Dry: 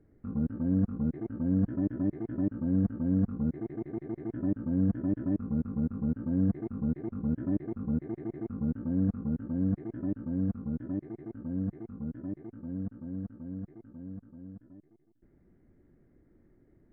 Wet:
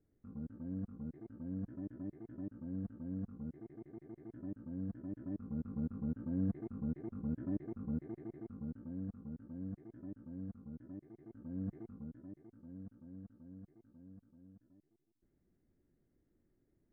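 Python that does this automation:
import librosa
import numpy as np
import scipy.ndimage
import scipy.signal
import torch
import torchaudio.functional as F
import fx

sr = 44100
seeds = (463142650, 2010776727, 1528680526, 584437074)

y = fx.gain(x, sr, db=fx.line((5.09, -14.5), (5.76, -8.0), (7.98, -8.0), (9.03, -15.0), (11.1, -15.0), (11.78, -6.0), (12.25, -14.0)))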